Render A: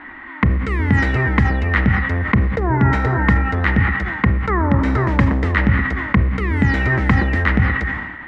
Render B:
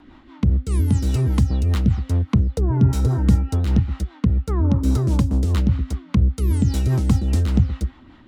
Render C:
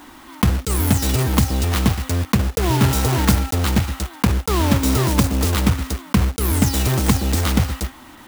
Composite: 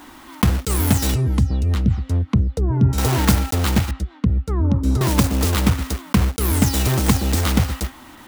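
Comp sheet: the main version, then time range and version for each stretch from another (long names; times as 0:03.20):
C
0:01.14–0:02.98: punch in from B
0:03.91–0:05.01: punch in from B
not used: A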